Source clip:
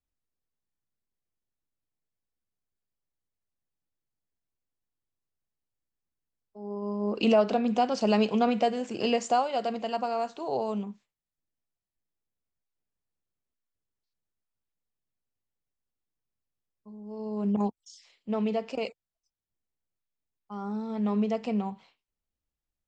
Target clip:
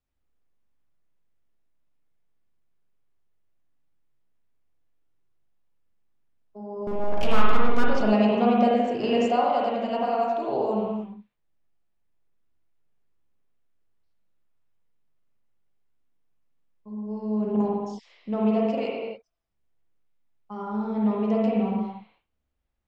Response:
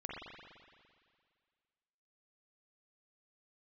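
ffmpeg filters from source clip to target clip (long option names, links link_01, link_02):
-filter_complex "[0:a]highshelf=frequency=4700:gain=-11.5,asplit=2[link_01][link_02];[link_02]acompressor=threshold=-41dB:ratio=6,volume=2dB[link_03];[link_01][link_03]amix=inputs=2:normalize=0,asettb=1/sr,asplit=3[link_04][link_05][link_06];[link_04]atrim=end=6.874[link_07];[link_05]atrim=start=6.87:end=7.84,asetpts=PTS-STARTPTS,afade=type=in:duration=0.004:curve=qsin,afade=type=out:start_time=0.966:duration=0.004:curve=qsin,aeval=exprs='abs(val(0))':channel_layout=same[link_08];[link_06]atrim=start=7.836[link_09];[link_07][link_08]acrossfade=duration=0.004:curve1=hsin:curve2=qsin[link_10];[link_10][link_09]acrossfade=duration=0.004:curve1=qsin:curve2=hsin[link_11];[1:a]atrim=start_sample=2205,afade=type=out:start_time=0.35:duration=0.01,atrim=end_sample=15876[link_12];[link_11][link_12]afir=irnorm=-1:irlink=0,volume=3dB"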